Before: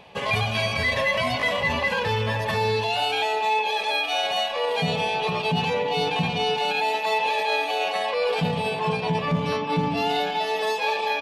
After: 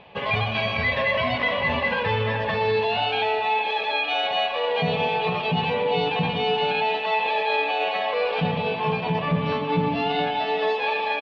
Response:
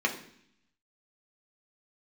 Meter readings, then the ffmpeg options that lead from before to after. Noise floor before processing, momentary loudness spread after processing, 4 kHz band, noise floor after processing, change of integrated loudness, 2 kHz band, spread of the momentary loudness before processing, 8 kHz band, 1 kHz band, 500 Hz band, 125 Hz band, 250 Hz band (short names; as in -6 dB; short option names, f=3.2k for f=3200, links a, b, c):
-29 dBFS, 2 LU, -1.0 dB, -28 dBFS, +0.5 dB, +0.5 dB, 2 LU, under -15 dB, +0.5 dB, +1.0 dB, 0.0 dB, +1.0 dB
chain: -filter_complex "[0:a]lowpass=f=3.7k:w=0.5412,lowpass=f=3.7k:w=1.3066,aecho=1:1:429:0.224,asplit=2[a][b];[1:a]atrim=start_sample=2205,adelay=121[c];[b][c]afir=irnorm=-1:irlink=0,volume=-19.5dB[d];[a][d]amix=inputs=2:normalize=0"